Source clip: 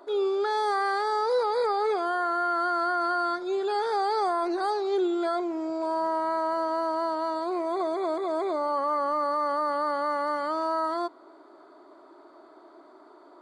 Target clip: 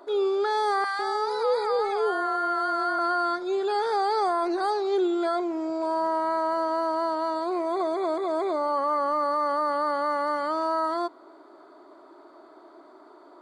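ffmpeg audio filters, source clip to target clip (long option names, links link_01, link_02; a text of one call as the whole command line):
ffmpeg -i in.wav -filter_complex "[0:a]asettb=1/sr,asplit=3[link_01][link_02][link_03];[link_01]atrim=end=0.844[link_04];[link_02]atrim=start=0.84:end=2.99,asetpts=PTS-STARTPTS,afade=type=in:duration=0.004:curve=qsin,afade=type=out:start_time=2.146:duration=0.004:curve=qsin,acrossover=split=860[link_05][link_06];[link_05]adelay=150[link_07];[link_07][link_06]amix=inputs=2:normalize=0,atrim=end_sample=94815[link_08];[link_03]atrim=start=2.986[link_09];[link_04][link_08]acrossfade=duration=0.004:curve1=hsin:curve2=qsin[link_10];[link_10][link_09]acrossfade=duration=0.004:curve1=qsin:curve2=hsin,volume=1.5dB" out.wav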